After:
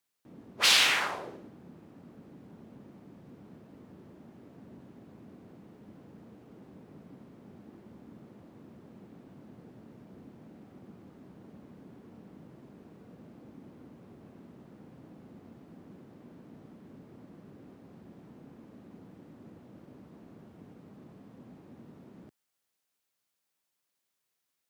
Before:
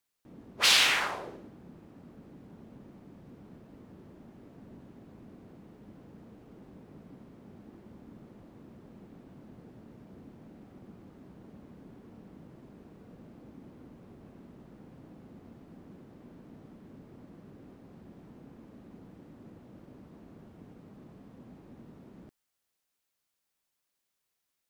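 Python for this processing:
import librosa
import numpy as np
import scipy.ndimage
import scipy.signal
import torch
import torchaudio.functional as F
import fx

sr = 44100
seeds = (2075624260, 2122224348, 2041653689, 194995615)

y = scipy.signal.sosfilt(scipy.signal.butter(2, 86.0, 'highpass', fs=sr, output='sos'), x)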